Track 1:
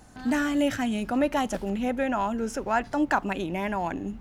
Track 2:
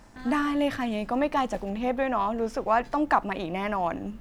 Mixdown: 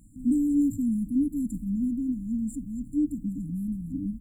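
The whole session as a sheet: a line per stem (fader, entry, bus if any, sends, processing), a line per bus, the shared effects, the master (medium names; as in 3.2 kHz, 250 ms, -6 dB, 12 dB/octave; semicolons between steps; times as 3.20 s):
-4.5 dB, 0.00 s, no send, none
-0.5 dB, 0.5 ms, no send, none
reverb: none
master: FFT band-reject 310–7100 Hz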